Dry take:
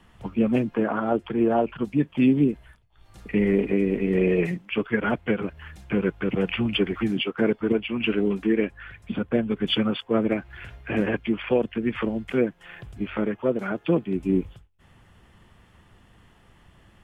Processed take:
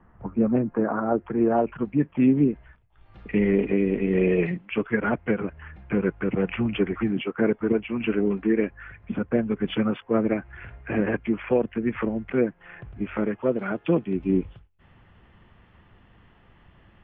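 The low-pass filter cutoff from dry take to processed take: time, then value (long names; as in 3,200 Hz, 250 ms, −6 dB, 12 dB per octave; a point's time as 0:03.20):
low-pass filter 24 dB per octave
0:00.98 1,600 Hz
0:01.61 2,200 Hz
0:02.36 2,200 Hz
0:03.33 3,200 Hz
0:04.41 3,200 Hz
0:05.04 2,300 Hz
0:12.80 2,300 Hz
0:13.70 3,100 Hz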